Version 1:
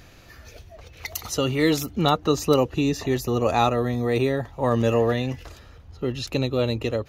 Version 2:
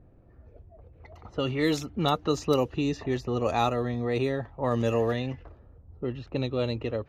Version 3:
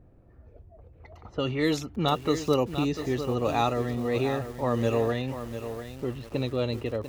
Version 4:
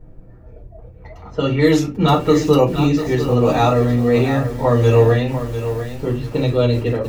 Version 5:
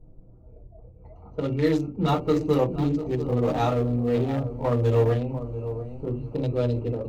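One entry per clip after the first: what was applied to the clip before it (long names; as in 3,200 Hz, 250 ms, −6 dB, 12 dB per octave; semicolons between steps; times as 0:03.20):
tape wow and flutter 19 cents; low-pass that shuts in the quiet parts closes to 500 Hz, open at −15.5 dBFS; level −5 dB
feedback echo at a low word length 696 ms, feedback 35%, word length 7 bits, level −9.5 dB
convolution reverb, pre-delay 5 ms, DRR −3.5 dB; level +3 dB
adaptive Wiener filter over 25 samples; level −8 dB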